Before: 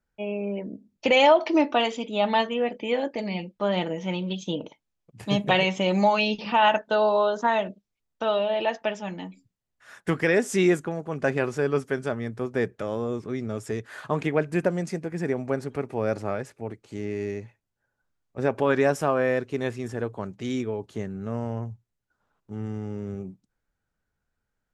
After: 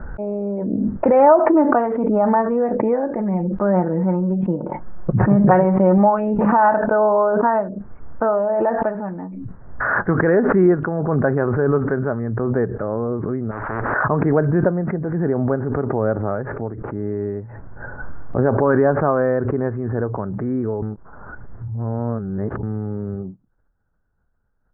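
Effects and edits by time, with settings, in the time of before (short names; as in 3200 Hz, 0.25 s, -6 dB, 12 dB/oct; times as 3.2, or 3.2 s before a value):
3.15–5.98 comb 5.5 ms, depth 55%
13.51–13.94 spectral compressor 10:1
20.82–22.63 reverse
whole clip: steep low-pass 1600 Hz 48 dB/oct; low shelf 76 Hz +8 dB; backwards sustainer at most 22 dB/s; gain +5 dB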